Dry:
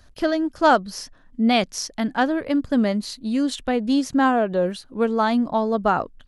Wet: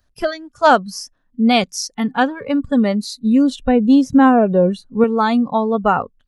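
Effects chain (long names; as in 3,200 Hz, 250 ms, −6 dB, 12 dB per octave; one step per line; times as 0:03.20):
noise reduction from a noise print of the clip's start 17 dB
0:03.23–0:05.04: spectral tilt −2.5 dB per octave
level +4.5 dB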